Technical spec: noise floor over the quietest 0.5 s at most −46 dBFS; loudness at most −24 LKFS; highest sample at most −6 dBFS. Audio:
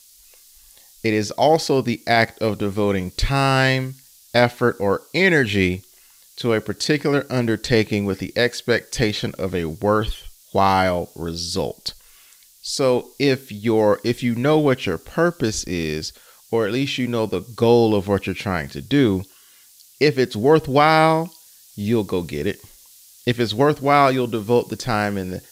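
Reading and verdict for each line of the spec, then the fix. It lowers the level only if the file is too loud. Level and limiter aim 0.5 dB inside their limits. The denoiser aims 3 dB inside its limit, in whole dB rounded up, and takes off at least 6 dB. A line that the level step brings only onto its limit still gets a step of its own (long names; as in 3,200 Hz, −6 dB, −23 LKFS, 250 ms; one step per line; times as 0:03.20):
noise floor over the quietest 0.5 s −51 dBFS: in spec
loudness −20.0 LKFS: out of spec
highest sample −3.5 dBFS: out of spec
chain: level −4.5 dB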